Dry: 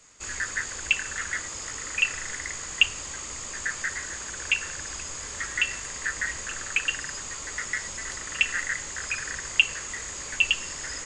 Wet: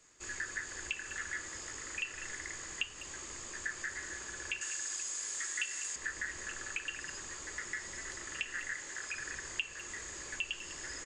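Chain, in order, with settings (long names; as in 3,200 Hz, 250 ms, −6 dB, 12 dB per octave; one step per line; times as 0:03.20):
0:08.74–0:09.15: low-shelf EQ 170 Hz −11 dB
flanger 0.34 Hz, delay 6.4 ms, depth 7.2 ms, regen −84%
0:04.61–0:05.96: RIAA equalisation recording
downward compressor 2 to 1, threshold −34 dBFS, peak gain reduction 9.5 dB
hollow resonant body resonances 350/1,700 Hz, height 9 dB
far-end echo of a speakerphone 200 ms, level −12 dB
level −4.5 dB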